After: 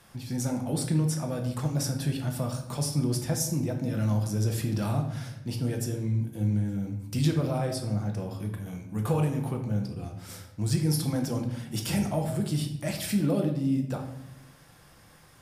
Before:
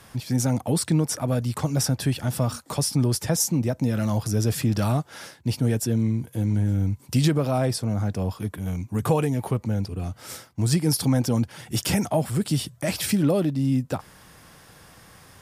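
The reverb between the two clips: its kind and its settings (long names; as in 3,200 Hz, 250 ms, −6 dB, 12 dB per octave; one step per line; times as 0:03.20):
rectangular room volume 280 cubic metres, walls mixed, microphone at 0.82 metres
level −8 dB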